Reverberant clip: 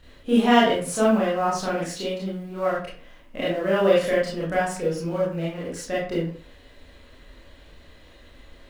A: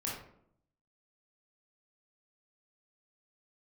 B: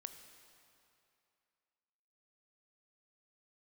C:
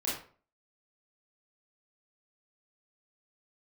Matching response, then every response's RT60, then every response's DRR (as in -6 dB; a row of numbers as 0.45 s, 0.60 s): C; 0.70 s, 2.6 s, 0.45 s; -5.0 dB, 7.5 dB, -7.0 dB